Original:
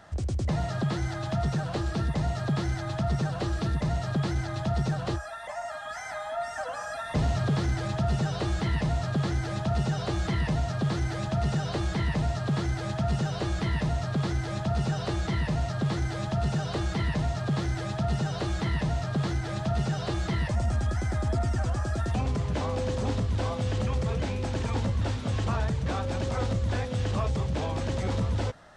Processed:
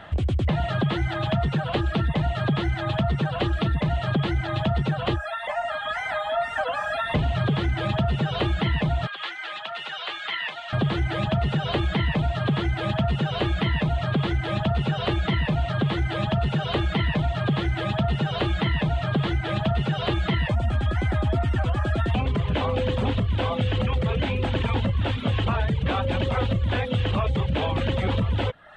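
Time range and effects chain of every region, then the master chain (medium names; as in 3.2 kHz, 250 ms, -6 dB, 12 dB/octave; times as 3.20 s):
9.07–10.73 s: high-pass 1.3 kHz + distance through air 54 m
whole clip: reverb removal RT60 0.59 s; resonant high shelf 4.2 kHz -10 dB, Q 3; compression, threshold -28 dBFS; trim +8.5 dB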